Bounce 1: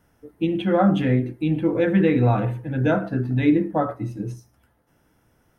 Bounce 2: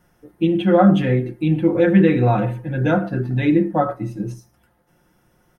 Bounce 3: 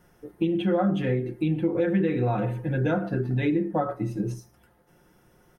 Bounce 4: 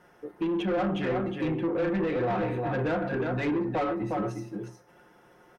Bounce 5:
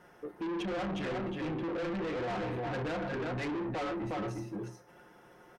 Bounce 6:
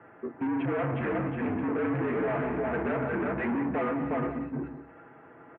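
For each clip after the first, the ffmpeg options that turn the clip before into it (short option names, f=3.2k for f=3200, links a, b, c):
-af "aecho=1:1:5.6:0.54,volume=2dB"
-af "equalizer=f=420:w=4.7:g=6,acompressor=threshold=-24dB:ratio=3"
-filter_complex "[0:a]aecho=1:1:359:0.473,asplit=2[a][b];[b]highpass=f=720:p=1,volume=22dB,asoftclip=type=tanh:threshold=-12dB[c];[a][c]amix=inputs=2:normalize=0,lowpass=f=1.6k:p=1,volume=-6dB,volume=-7.5dB"
-af "asoftclip=type=tanh:threshold=-33dB"
-af "aecho=1:1:179:0.266,highpass=f=180:t=q:w=0.5412,highpass=f=180:t=q:w=1.307,lowpass=f=2.4k:t=q:w=0.5176,lowpass=f=2.4k:t=q:w=0.7071,lowpass=f=2.4k:t=q:w=1.932,afreqshift=-59,volume=6dB"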